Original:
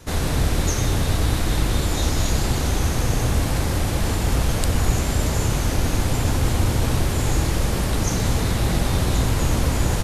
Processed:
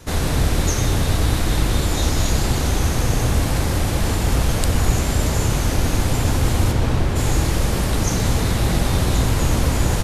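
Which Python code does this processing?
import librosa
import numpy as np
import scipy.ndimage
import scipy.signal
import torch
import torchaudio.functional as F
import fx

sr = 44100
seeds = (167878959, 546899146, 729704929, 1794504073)

y = fx.lowpass(x, sr, hz=fx.line((6.71, 4000.0), (7.15, 2400.0)), slope=6, at=(6.71, 7.15), fade=0.02)
y = y * librosa.db_to_amplitude(2.0)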